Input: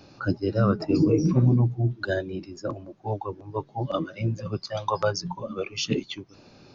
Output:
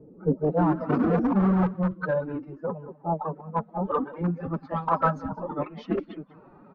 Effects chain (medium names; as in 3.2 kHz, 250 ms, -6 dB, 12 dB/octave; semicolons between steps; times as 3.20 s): level-controlled noise filter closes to 2.3 kHz, open at -17.5 dBFS; in parallel at -10 dB: integer overflow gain 17.5 dB; on the sum: echo from a far wall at 32 m, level -18 dB; formant-preserving pitch shift +7.5 st; low-pass sweep 390 Hz -> 1.2 kHz, 0.22–0.76 s; trim -2.5 dB